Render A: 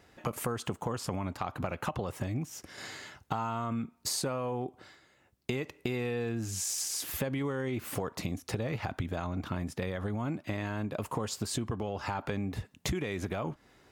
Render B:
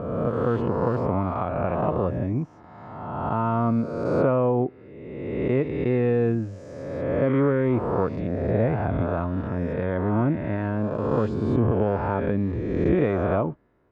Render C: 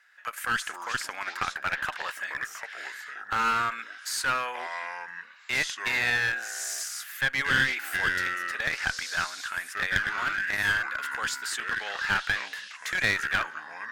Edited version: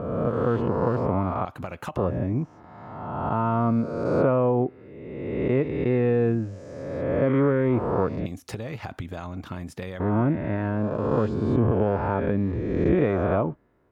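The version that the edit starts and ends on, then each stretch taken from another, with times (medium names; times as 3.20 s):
B
1.45–1.97 s: from A
8.26–10.00 s: from A
not used: C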